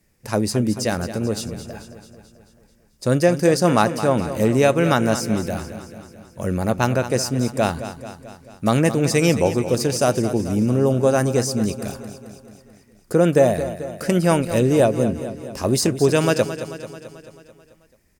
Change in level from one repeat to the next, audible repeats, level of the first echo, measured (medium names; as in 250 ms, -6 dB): -4.5 dB, 6, -12.0 dB